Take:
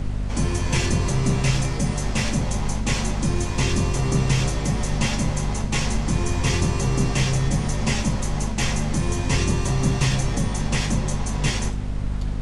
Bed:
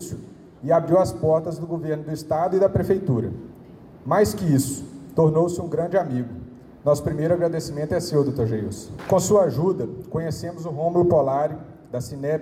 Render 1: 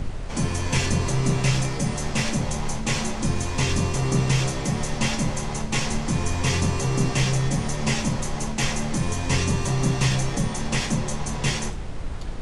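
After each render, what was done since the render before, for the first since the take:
hum removal 50 Hz, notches 7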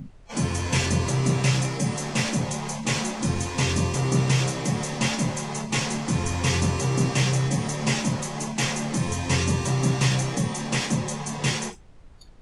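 noise reduction from a noise print 19 dB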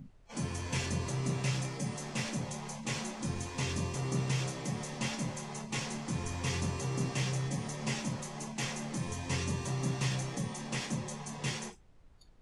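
level −11 dB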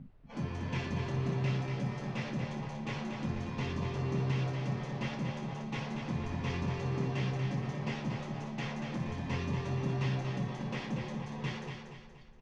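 high-frequency loss of the air 250 metres
repeating echo 237 ms, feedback 42%, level −6 dB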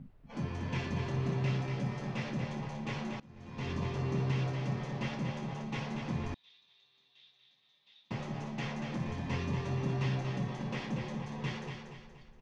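0:03.20–0:03.71: fade in quadratic, from −22.5 dB
0:06.34–0:08.11: resonant band-pass 3,700 Hz, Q 20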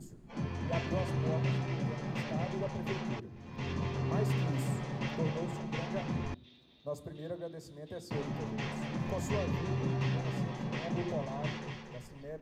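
mix in bed −20.5 dB

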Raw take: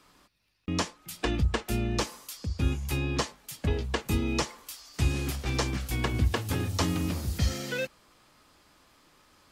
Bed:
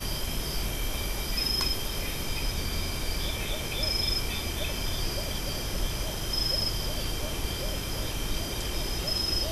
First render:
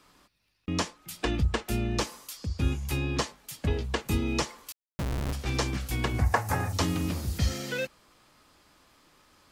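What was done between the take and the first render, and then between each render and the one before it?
0:04.72–0:05.33: comparator with hysteresis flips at −26.5 dBFS
0:06.18–0:06.73: drawn EQ curve 150 Hz 0 dB, 340 Hz −6 dB, 790 Hz +13 dB, 1,200 Hz +7 dB, 1,900 Hz +7 dB, 3,200 Hz −11 dB, 6,000 Hz +1 dB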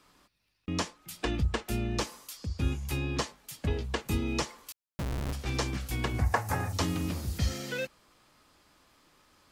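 level −2.5 dB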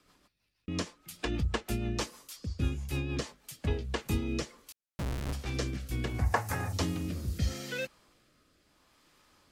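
rotating-speaker cabinet horn 6.3 Hz, later 0.75 Hz, at 0:03.26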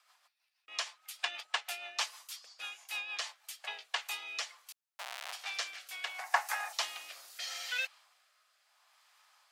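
dynamic equaliser 3,200 Hz, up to +6 dB, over −53 dBFS, Q 0.85
Chebyshev high-pass filter 710 Hz, order 4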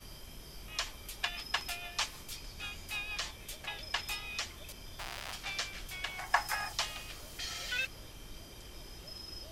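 mix in bed −18 dB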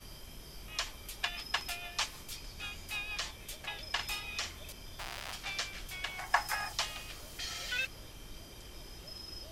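0:03.94–0:04.70: double-tracking delay 50 ms −8 dB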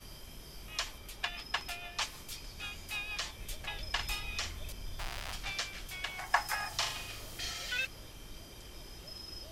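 0:00.98–0:02.02: high-shelf EQ 4,200 Hz −5 dB
0:03.38–0:05.52: low-shelf EQ 100 Hz +9.5 dB
0:06.68–0:07.51: flutter between parallel walls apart 6.7 metres, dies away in 0.47 s

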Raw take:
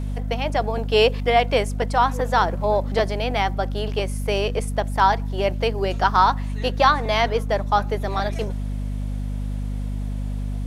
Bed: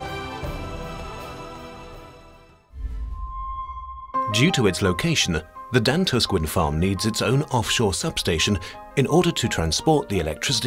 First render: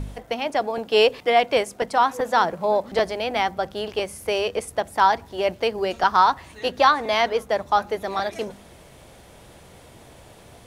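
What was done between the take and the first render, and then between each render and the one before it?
hum removal 50 Hz, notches 5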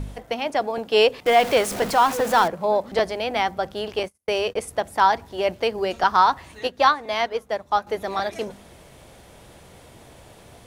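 0:01.26–0:02.48: converter with a step at zero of −25 dBFS
0:04.03–0:04.62: noise gate −35 dBFS, range −44 dB
0:06.67–0:07.87: expander for the loud parts, over −33 dBFS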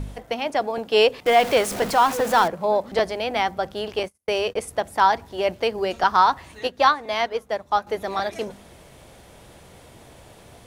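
no processing that can be heard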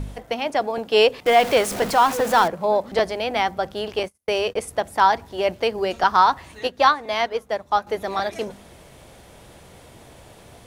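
level +1 dB

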